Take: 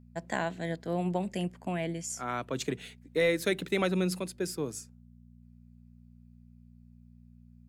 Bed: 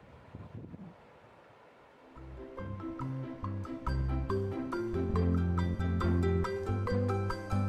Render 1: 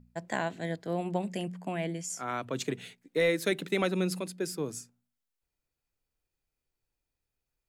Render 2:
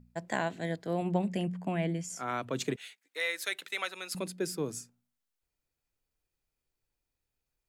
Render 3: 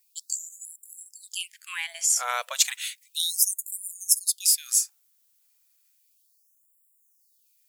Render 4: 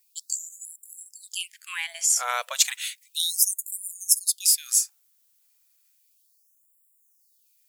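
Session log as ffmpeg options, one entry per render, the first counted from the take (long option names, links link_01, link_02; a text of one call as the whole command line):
ffmpeg -i in.wav -af "bandreject=frequency=60:width_type=h:width=4,bandreject=frequency=120:width_type=h:width=4,bandreject=frequency=180:width_type=h:width=4,bandreject=frequency=240:width_type=h:width=4" out.wav
ffmpeg -i in.wav -filter_complex "[0:a]asettb=1/sr,asplit=3[link_01][link_02][link_03];[link_01]atrim=end=1.024[link_04];[link_02]atrim=start=1.02:end=2.16,asetpts=PTS-STARTPTS,afade=type=in:duration=0.004:curve=qsin,afade=type=out:start_time=1.136:duration=0.004:curve=qsin,bass=frequency=250:gain=5,treble=frequency=4000:gain=-5[link_05];[link_03]atrim=start=2.156[link_06];[link_04][link_05]acrossfade=duration=0.004:curve1=hsin:curve2=qsin[link_07];[link_07][link_06]acrossfade=duration=0.004:curve1=qsin:curve2=hsin,asettb=1/sr,asplit=3[link_08][link_09][link_10];[link_08]atrim=end=2.764[link_11];[link_09]atrim=start=2.76:end=4.15,asetpts=PTS-STARTPTS,afade=type=in:duration=0.004:curve=qsin,afade=type=out:start_time=1.386:duration=0.004:curve=qsin,highpass=1100[link_12];[link_10]atrim=start=4.146[link_13];[link_11][link_12]acrossfade=duration=0.004:curve1=hsin:curve2=qsin[link_14];[link_14][link_13]acrossfade=duration=0.004:curve1=qsin:curve2=hsin" out.wav
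ffmpeg -i in.wav -af "crystalizer=i=10:c=0,afftfilt=real='re*gte(b*sr/1024,440*pow(7200/440,0.5+0.5*sin(2*PI*0.33*pts/sr)))':imag='im*gte(b*sr/1024,440*pow(7200/440,0.5+0.5*sin(2*PI*0.33*pts/sr)))':win_size=1024:overlap=0.75" out.wav
ffmpeg -i in.wav -af "volume=1dB" out.wav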